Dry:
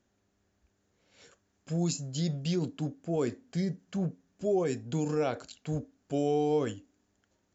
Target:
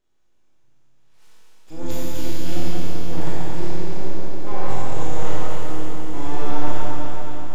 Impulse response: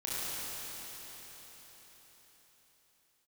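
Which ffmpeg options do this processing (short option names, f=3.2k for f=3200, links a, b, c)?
-filter_complex "[0:a]aeval=exprs='abs(val(0))':c=same,asplit=2[a][b];[b]asetrate=22050,aresample=44100,atempo=2,volume=-4dB[c];[a][c]amix=inputs=2:normalize=0[d];[1:a]atrim=start_sample=2205[e];[d][e]afir=irnorm=-1:irlink=0,volume=-1dB"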